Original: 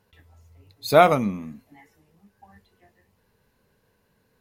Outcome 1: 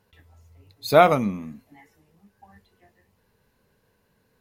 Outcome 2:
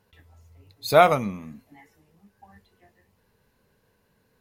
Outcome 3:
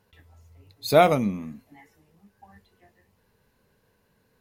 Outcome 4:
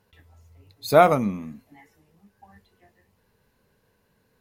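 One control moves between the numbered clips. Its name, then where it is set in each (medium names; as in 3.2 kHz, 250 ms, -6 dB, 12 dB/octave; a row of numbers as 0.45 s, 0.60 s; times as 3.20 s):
dynamic bell, frequency: 8.7 kHz, 260 Hz, 1.2 kHz, 3.2 kHz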